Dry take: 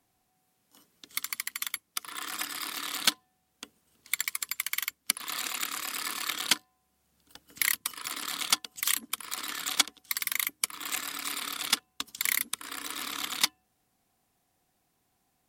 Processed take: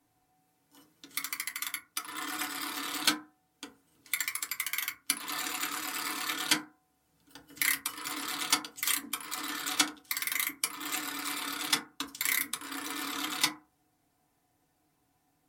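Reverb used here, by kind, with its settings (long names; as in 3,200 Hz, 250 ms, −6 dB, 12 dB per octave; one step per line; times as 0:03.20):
feedback delay network reverb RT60 0.31 s, low-frequency decay 1.1×, high-frequency decay 0.4×, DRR −2.5 dB
level −3.5 dB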